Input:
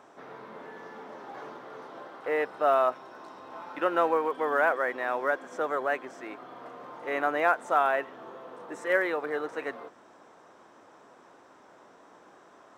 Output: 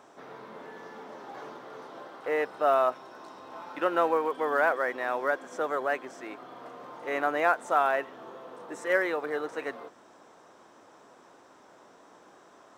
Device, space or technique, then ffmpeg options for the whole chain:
exciter from parts: -filter_complex "[0:a]asplit=2[s0][s1];[s1]highpass=2700,asoftclip=type=tanh:threshold=0.0106,volume=0.562[s2];[s0][s2]amix=inputs=2:normalize=0"

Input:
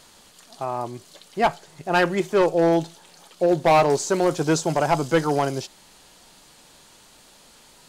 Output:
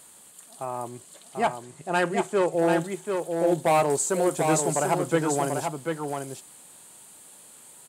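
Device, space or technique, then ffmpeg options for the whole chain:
budget condenser microphone: -filter_complex "[0:a]asettb=1/sr,asplit=3[s0][s1][s2];[s0]atrim=end=0.894[s3];[s1]atrim=start=0.89:end=2.53,asetpts=PTS-STARTPTS,afade=t=in:d=0.004:c=qsin,afade=t=out:st=1.636:d=0.004:c=qsin,lowpass=8700[s4];[s2]atrim=start=2.526[s5];[s3][s4]acrossfade=d=0.004:c1=hsin:c2=qsin[s6];[s6][s5]acrossfade=d=0.004:c1=qsin:c2=hsin,asettb=1/sr,asplit=3[s7][s8][s9];[s7]atrim=end=4.944[s10];[s8]atrim=start=4.94:end=5.34,asetpts=PTS-STARTPTS,afade=t=in:d=0.004:c=qsin,afade=t=out:st=0.396:d=0.004:c=qsin,acrossover=split=4800[s11][s12];[s12]acompressor=threshold=0.00141:ratio=4:attack=1:release=60[s13];[s11][s13]amix=inputs=2:normalize=0[s14];[s9]atrim=start=5.336[s15];[s10][s14]acrossfade=d=0.004:c1=hsin:c2=qsin[s16];[s16][s15]acrossfade=d=0.004:c1=qsin:c2=hsin,highpass=90,highshelf=f=6800:t=q:w=3:g=7.5,aecho=1:1:740:0.562,volume=0.596"

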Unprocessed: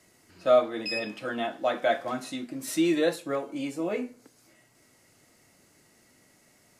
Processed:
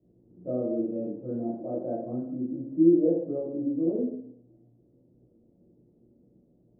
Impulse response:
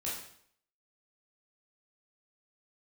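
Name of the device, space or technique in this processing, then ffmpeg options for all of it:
next room: -filter_complex "[0:a]lowpass=f=450:w=0.5412,lowpass=f=450:w=1.3066[s0];[1:a]atrim=start_sample=2205[s1];[s0][s1]afir=irnorm=-1:irlink=0,volume=1.26"

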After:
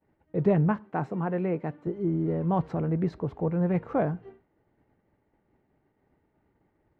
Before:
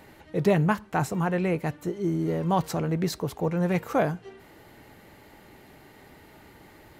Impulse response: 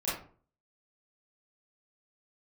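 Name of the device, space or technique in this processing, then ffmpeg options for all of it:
hearing-loss simulation: -filter_complex "[0:a]asettb=1/sr,asplit=3[s0][s1][s2];[s0]atrim=end=0.764[s3];[s1]atrim=start=0.76:end=1.87,asetpts=PTS-STARTPTS,afade=t=in:d=0.004:c=qsin,afade=t=out:st=1.106:d=0.004:c=qsin,highpass=180[s4];[s2]atrim=start=1.866[s5];[s3][s4]acrossfade=d=0.004:c1=hsin:c2=qsin[s6];[s6][s5]acrossfade=d=0.004:c1=qsin:c2=hsin,lowpass=2000,agate=range=0.0224:threshold=0.01:ratio=3:detection=peak,tiltshelf=f=750:g=4,volume=0.668"

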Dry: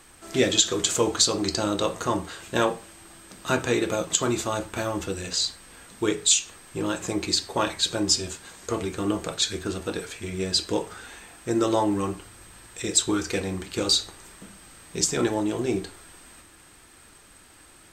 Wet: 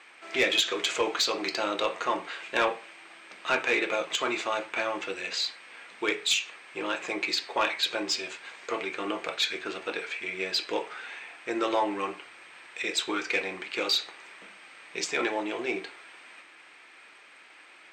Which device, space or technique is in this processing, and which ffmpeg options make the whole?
intercom: -af "highpass=490,lowpass=3800,equalizer=f=2300:t=o:w=0.59:g=10.5,asoftclip=type=tanh:threshold=0.178"

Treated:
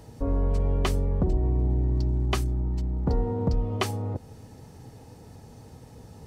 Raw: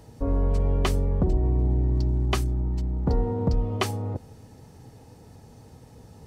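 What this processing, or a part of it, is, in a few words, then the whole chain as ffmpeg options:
parallel compression: -filter_complex "[0:a]asplit=2[s0][s1];[s1]acompressor=threshold=0.02:ratio=6,volume=0.596[s2];[s0][s2]amix=inputs=2:normalize=0,volume=0.75"

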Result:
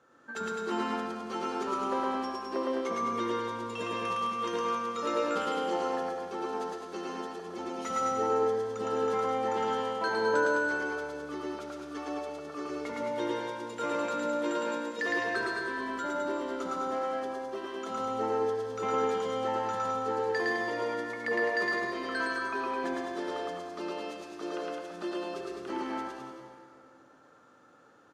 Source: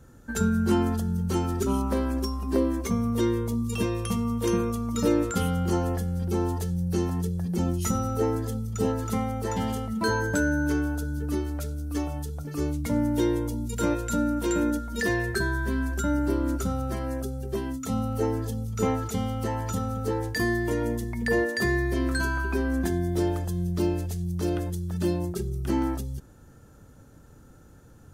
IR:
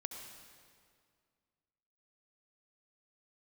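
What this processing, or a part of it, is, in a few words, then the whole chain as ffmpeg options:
station announcement: -filter_complex "[0:a]asettb=1/sr,asplit=3[s0][s1][s2];[s0]atrim=end=4.154[s3];[s1]atrim=start=4.15:end=5.27,asetpts=PTS-STARTPTS,afade=t=in:d=0.004:c=qsin,afade=t=out:st=1.116:d=0.004:c=qsin,highpass=f=260:p=1[s4];[s2]atrim=start=5.266[s5];[s3][s4]acrossfade=d=0.004:c1=hsin:c2=qsin[s6];[s6][s5]acrossfade=d=0.004:c1=qsin:c2=hsin,highpass=490,lowpass=3800,equalizer=f=1200:t=o:w=0.22:g=7,aecho=1:1:110.8|209.9:0.891|0.562[s7];[1:a]atrim=start_sample=2205[s8];[s7][s8]afir=irnorm=-1:irlink=0"

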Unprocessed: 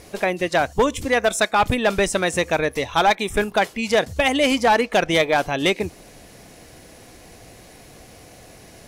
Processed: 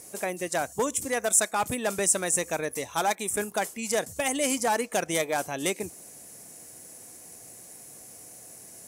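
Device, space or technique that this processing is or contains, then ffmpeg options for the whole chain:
budget condenser microphone: -af "highpass=120,highshelf=f=5600:t=q:w=1.5:g=14,volume=0.355"

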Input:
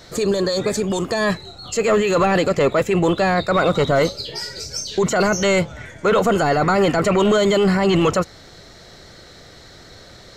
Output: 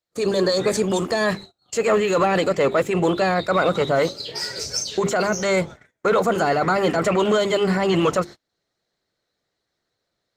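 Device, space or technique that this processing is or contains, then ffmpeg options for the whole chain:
video call: -filter_complex "[0:a]asettb=1/sr,asplit=3[s0][s1][s2];[s0]atrim=end=3.814[s3];[s1]atrim=start=3.81:end=4.58,asetpts=PTS-STARTPTS,afade=t=in:d=0.004:c=qsin,afade=t=out:st=0.766:d=0.004:c=qsin,highpass=f=76:w=0.5412,highpass=f=76:w=1.3066[s4];[s2]atrim=start=4.576[s5];[s3][s4]acrossfade=d=0.004:c1=hsin:c2=qsin[s6];[s6][s5]acrossfade=d=0.004:c1=qsin:c2=hsin,asplit=3[s7][s8][s9];[s7]afade=t=out:st=5.42:d=0.02[s10];[s8]bandreject=f=2900:w=5.2,afade=t=in:st=5.42:d=0.02,afade=t=out:st=6.3:d=0.02[s11];[s9]afade=t=in:st=6.3:d=0.02[s12];[s10][s11][s12]amix=inputs=3:normalize=0,highpass=f=160:p=1,bandreject=f=50:t=h:w=6,bandreject=f=100:t=h:w=6,bandreject=f=150:t=h:w=6,bandreject=f=200:t=h:w=6,bandreject=f=250:t=h:w=6,bandreject=f=300:t=h:w=6,bandreject=f=350:t=h:w=6,bandreject=f=400:t=h:w=6,dynaudnorm=f=140:g=3:m=3.98,agate=range=0.0158:threshold=0.0562:ratio=16:detection=peak,volume=0.422" -ar 48000 -c:a libopus -b:a 20k

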